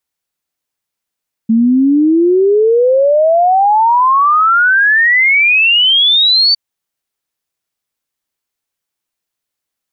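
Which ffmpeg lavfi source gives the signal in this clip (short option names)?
-f lavfi -i "aevalsrc='0.473*clip(min(t,5.06-t)/0.01,0,1)*sin(2*PI*220*5.06/log(4600/220)*(exp(log(4600/220)*t/5.06)-1))':d=5.06:s=44100"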